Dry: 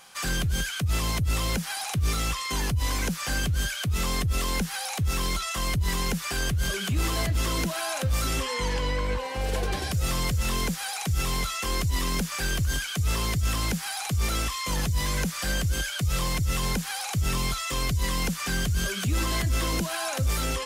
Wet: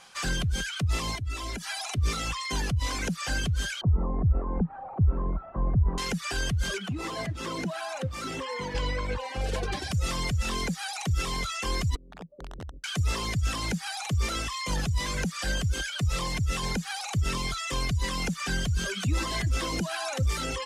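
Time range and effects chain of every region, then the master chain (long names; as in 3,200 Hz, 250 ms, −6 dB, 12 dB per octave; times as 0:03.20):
0:01.15–0:01.98: comb filter 3 ms, depth 66% + downward compressor 4 to 1, threshold −27 dBFS
0:03.81–0:05.98: linear delta modulator 32 kbit/s, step −34 dBFS + low-pass filter 1,000 Hz 24 dB per octave + low-shelf EQ 250 Hz +5 dB
0:06.78–0:08.75: hold until the input has moved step −38 dBFS + high-pass filter 130 Hz + high-shelf EQ 2,200 Hz −7.5 dB
0:11.95–0:12.84: Chebyshev low-pass filter 570 Hz, order 5 + downward compressor 3 to 1, threshold −40 dBFS + wrap-around overflow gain 33 dB
whole clip: low-pass filter 8,100 Hz 12 dB per octave; reverb reduction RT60 1 s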